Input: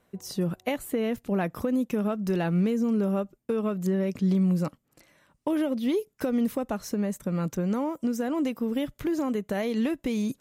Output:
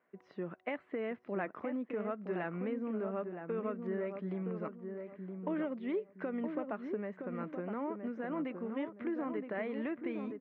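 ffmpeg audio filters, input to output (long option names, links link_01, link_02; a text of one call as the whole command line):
ffmpeg -i in.wav -filter_complex "[0:a]highpass=350,equalizer=frequency=510:width_type=q:width=4:gain=-4,equalizer=frequency=820:width_type=q:width=4:gain=-4,equalizer=frequency=2000:width_type=q:width=4:gain=3,lowpass=frequency=2200:width=0.5412,lowpass=frequency=2200:width=1.3066,asplit=2[link_01][link_02];[link_02]adelay=968,lowpass=frequency=1100:poles=1,volume=-5.5dB,asplit=2[link_03][link_04];[link_04]adelay=968,lowpass=frequency=1100:poles=1,volume=0.36,asplit=2[link_05][link_06];[link_06]adelay=968,lowpass=frequency=1100:poles=1,volume=0.36,asplit=2[link_07][link_08];[link_08]adelay=968,lowpass=frequency=1100:poles=1,volume=0.36[link_09];[link_01][link_03][link_05][link_07][link_09]amix=inputs=5:normalize=0,volume=-5.5dB" out.wav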